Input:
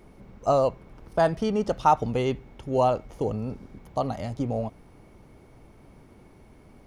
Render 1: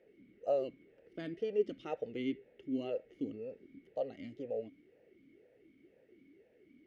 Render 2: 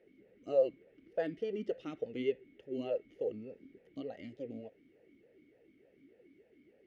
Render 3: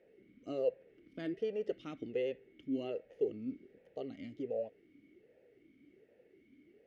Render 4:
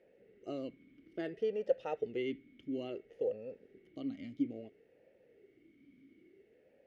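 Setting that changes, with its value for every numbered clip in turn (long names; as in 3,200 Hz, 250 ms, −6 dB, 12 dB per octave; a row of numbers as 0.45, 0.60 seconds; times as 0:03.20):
formant filter swept between two vowels, speed: 2, 3.4, 1.3, 0.59 Hertz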